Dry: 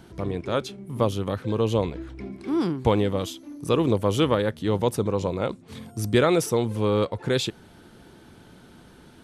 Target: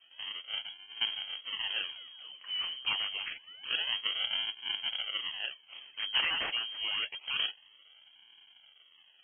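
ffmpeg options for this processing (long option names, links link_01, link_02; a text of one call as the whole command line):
ffmpeg -i in.wav -filter_complex "[0:a]acrossover=split=120|460|2300[link_01][link_02][link_03][link_04];[link_04]dynaudnorm=framelen=170:gausssize=7:maxgain=12dB[link_05];[link_01][link_02][link_03][link_05]amix=inputs=4:normalize=0,flanger=delay=6.6:depth=7.5:regen=-46:speed=0.3:shape=sinusoidal,acrusher=samples=36:mix=1:aa=0.000001:lfo=1:lforange=57.6:lforate=0.27,lowpass=frequency=2800:width_type=q:width=0.5098,lowpass=frequency=2800:width_type=q:width=0.6013,lowpass=frequency=2800:width_type=q:width=0.9,lowpass=frequency=2800:width_type=q:width=2.563,afreqshift=-3300,volume=-8.5dB" out.wav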